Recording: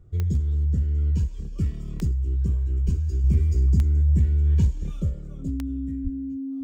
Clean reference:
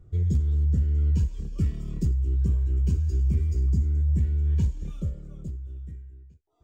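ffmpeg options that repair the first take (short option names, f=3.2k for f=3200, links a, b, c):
-filter_complex "[0:a]adeclick=t=4,bandreject=f=270:w=30,asplit=3[a][b][c];[a]afade=t=out:st=2.85:d=0.02[d];[b]highpass=f=140:w=0.5412,highpass=f=140:w=1.3066,afade=t=in:st=2.85:d=0.02,afade=t=out:st=2.97:d=0.02[e];[c]afade=t=in:st=2.97:d=0.02[f];[d][e][f]amix=inputs=3:normalize=0,asplit=3[g][h][i];[g]afade=t=out:st=6.03:d=0.02[j];[h]highpass=f=140:w=0.5412,highpass=f=140:w=1.3066,afade=t=in:st=6.03:d=0.02,afade=t=out:st=6.15:d=0.02[k];[i]afade=t=in:st=6.15:d=0.02[l];[j][k][l]amix=inputs=3:normalize=0,asetnsamples=n=441:p=0,asendcmd='3.24 volume volume -4dB',volume=0dB"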